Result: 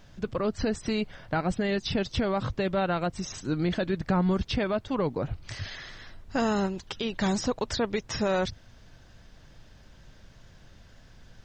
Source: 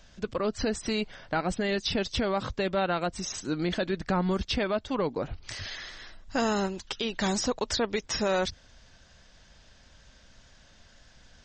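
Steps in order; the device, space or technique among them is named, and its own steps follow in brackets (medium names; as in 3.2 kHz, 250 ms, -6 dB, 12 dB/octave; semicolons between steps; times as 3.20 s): car interior (peaking EQ 120 Hz +9 dB 0.97 oct; treble shelf 3.9 kHz -6 dB; brown noise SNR 23 dB)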